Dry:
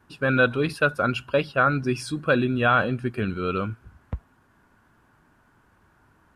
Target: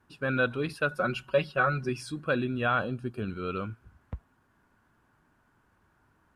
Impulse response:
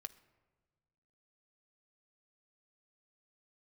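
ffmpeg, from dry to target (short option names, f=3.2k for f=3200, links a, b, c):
-filter_complex "[0:a]asettb=1/sr,asplit=3[a][b][c];[a]atrim=end=0.914[d];[b]atrim=start=0.91:end=1.89,asetpts=PTS-STARTPTS,afade=t=in:d=0.004:c=qsin,afade=t=out:st=0.976:d=0.004:c=qsin,aecho=1:1:5.4:0.82,atrim=end_sample=43218[e];[c]atrim=start=1.886[f];[d][e]acrossfade=d=0.004:c1=hsin:c2=qsin[g];[g][f]acrossfade=d=0.004:c1=qsin:c2=hsin,asettb=1/sr,asplit=3[h][i][j];[h]atrim=end=2.794[k];[i]atrim=start=2.79:end=3.28,asetpts=PTS-STARTPTS,afade=t=in:d=0.004:c=qsin,afade=t=out:st=0.486:d=0.004:c=qsin,equalizer=f=2k:t=o:w=0.44:g=-14[l];[j]atrim=start=3.276[m];[k][l]acrossfade=d=0.004:c1=hsin:c2=qsin[n];[n][m]acrossfade=d=0.004:c1=qsin:c2=hsin,volume=-7dB"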